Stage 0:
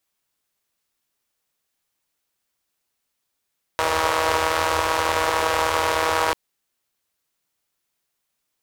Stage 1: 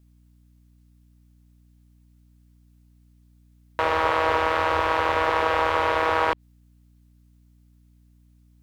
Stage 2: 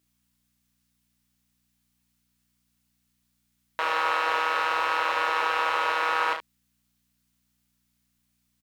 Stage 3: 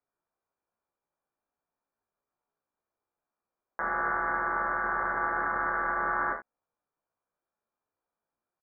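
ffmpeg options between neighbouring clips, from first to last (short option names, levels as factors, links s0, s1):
-filter_complex "[0:a]aeval=exprs='clip(val(0),-1,0.335)':c=same,aeval=exprs='val(0)+0.00178*(sin(2*PI*60*n/s)+sin(2*PI*2*60*n/s)/2+sin(2*PI*3*60*n/s)/3+sin(2*PI*4*60*n/s)/4+sin(2*PI*5*60*n/s)/5)':c=same,acrossover=split=3600[s0][s1];[s1]acompressor=threshold=0.00355:ratio=4:attack=1:release=60[s2];[s0][s2]amix=inputs=2:normalize=0"
-filter_complex "[0:a]highpass=f=1400:p=1,asplit=2[s0][s1];[s1]aecho=0:1:32|71:0.562|0.355[s2];[s0][s2]amix=inputs=2:normalize=0"
-filter_complex "[0:a]highpass=1300,asplit=2[s0][s1];[s1]adelay=16,volume=0.398[s2];[s0][s2]amix=inputs=2:normalize=0,lowpass=f=2200:t=q:w=0.5098,lowpass=f=2200:t=q:w=0.6013,lowpass=f=2200:t=q:w=0.9,lowpass=f=2200:t=q:w=2.563,afreqshift=-2600"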